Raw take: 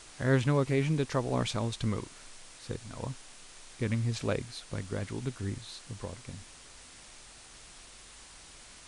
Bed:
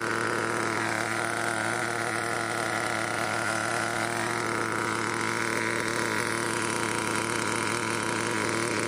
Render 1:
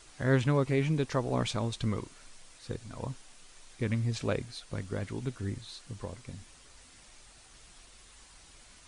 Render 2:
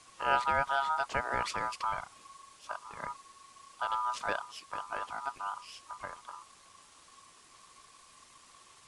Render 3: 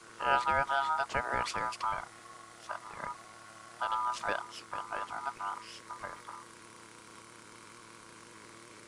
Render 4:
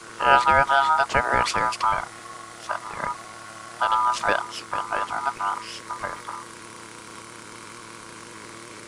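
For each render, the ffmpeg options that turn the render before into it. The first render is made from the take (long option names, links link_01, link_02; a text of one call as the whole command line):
ffmpeg -i in.wav -af "afftdn=noise_reduction=6:noise_floor=-52" out.wav
ffmpeg -i in.wav -af "aeval=exprs='val(0)*sin(2*PI*1100*n/s)':channel_layout=same" out.wav
ffmpeg -i in.wav -i bed.wav -filter_complex "[1:a]volume=-26dB[link_01];[0:a][link_01]amix=inputs=2:normalize=0" out.wav
ffmpeg -i in.wav -af "volume=11.5dB" out.wav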